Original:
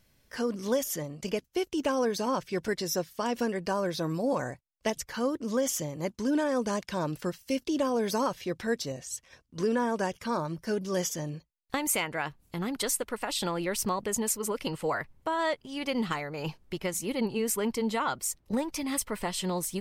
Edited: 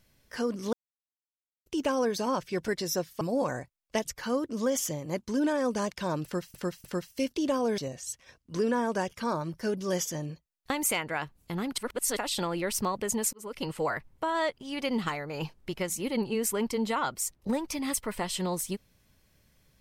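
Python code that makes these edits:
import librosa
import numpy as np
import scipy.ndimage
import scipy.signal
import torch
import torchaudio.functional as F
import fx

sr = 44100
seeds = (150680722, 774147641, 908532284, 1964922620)

y = fx.edit(x, sr, fx.silence(start_s=0.73, length_s=0.93),
    fx.cut(start_s=3.21, length_s=0.91),
    fx.repeat(start_s=7.15, length_s=0.3, count=3),
    fx.cut(start_s=8.09, length_s=0.73),
    fx.reverse_span(start_s=12.82, length_s=0.39),
    fx.fade_in_span(start_s=14.37, length_s=0.35), tone=tone)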